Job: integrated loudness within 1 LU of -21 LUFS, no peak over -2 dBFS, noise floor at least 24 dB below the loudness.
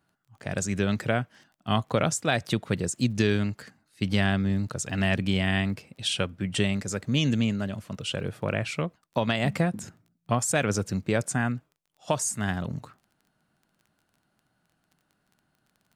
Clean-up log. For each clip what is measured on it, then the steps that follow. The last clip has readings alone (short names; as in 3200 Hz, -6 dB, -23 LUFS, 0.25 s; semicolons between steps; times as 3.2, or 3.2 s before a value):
ticks 20/s; loudness -27.5 LUFS; peak -9.0 dBFS; loudness target -21.0 LUFS
-> de-click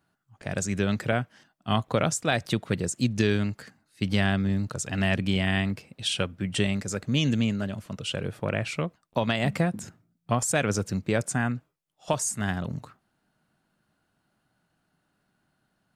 ticks 0/s; loudness -27.5 LUFS; peak -9.0 dBFS; loudness target -21.0 LUFS
-> gain +6.5 dB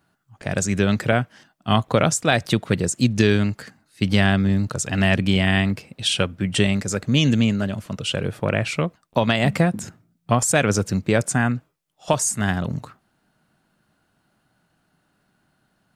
loudness -21.0 LUFS; peak -2.5 dBFS; noise floor -69 dBFS